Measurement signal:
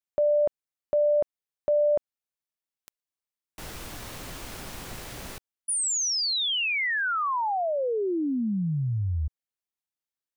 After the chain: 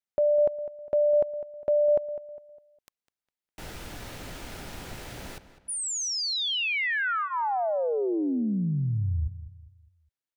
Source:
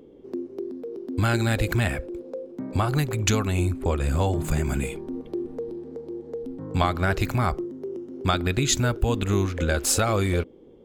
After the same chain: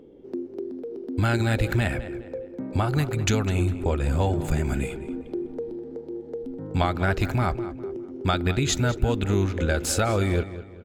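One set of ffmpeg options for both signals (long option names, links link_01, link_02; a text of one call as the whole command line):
ffmpeg -i in.wav -filter_complex "[0:a]highshelf=frequency=5500:gain=-6.5,bandreject=frequency=1100:width=8.7,asplit=2[link_01][link_02];[link_02]adelay=203,lowpass=frequency=3900:poles=1,volume=-13.5dB,asplit=2[link_03][link_04];[link_04]adelay=203,lowpass=frequency=3900:poles=1,volume=0.38,asplit=2[link_05][link_06];[link_06]adelay=203,lowpass=frequency=3900:poles=1,volume=0.38,asplit=2[link_07][link_08];[link_08]adelay=203,lowpass=frequency=3900:poles=1,volume=0.38[link_09];[link_01][link_03][link_05][link_07][link_09]amix=inputs=5:normalize=0" out.wav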